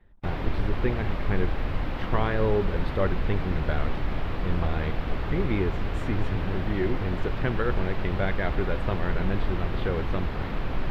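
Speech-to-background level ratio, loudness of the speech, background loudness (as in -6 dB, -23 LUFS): 1.0 dB, -31.0 LUFS, -32.0 LUFS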